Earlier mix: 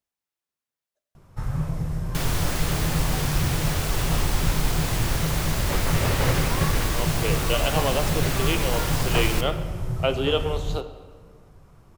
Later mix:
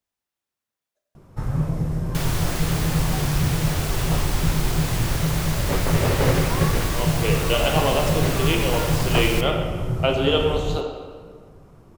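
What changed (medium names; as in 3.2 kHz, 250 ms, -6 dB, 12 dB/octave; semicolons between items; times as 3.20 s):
speech: send +10.5 dB; first sound: add peaking EQ 310 Hz +8 dB 2.3 oct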